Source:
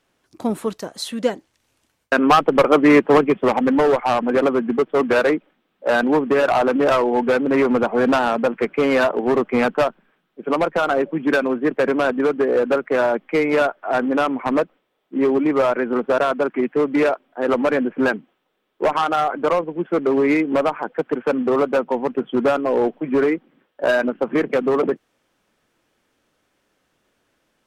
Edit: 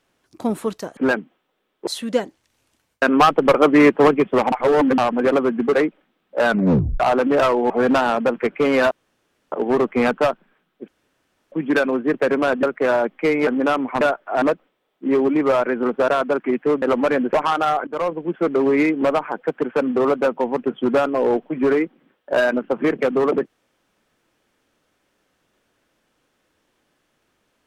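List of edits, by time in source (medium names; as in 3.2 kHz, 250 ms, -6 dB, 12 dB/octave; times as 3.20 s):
3.62–4.08 s: reverse
4.83–5.22 s: delete
5.97 s: tape stop 0.52 s
7.19–7.88 s: delete
9.09 s: insert room tone 0.61 s
10.45–11.09 s: room tone
12.20–12.73 s: delete
13.57–13.98 s: move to 14.52 s
16.92–17.43 s: delete
17.94–18.84 s: move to 0.97 s
19.38–19.65 s: fade in, from -16 dB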